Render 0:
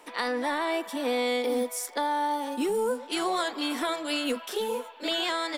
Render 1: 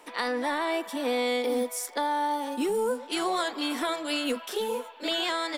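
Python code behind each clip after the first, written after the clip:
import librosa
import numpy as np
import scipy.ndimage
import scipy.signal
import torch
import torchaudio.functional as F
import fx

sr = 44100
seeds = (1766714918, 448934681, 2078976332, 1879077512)

y = x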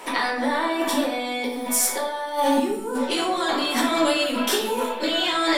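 y = fx.over_compress(x, sr, threshold_db=-34.0, ratio=-1.0)
y = fx.room_shoebox(y, sr, seeds[0], volume_m3=120.0, walls='mixed', distance_m=1.1)
y = F.gain(torch.from_numpy(y), 7.0).numpy()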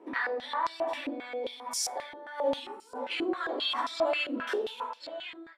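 y = fx.fade_out_tail(x, sr, length_s=1.03)
y = fx.filter_held_bandpass(y, sr, hz=7.5, low_hz=330.0, high_hz=5100.0)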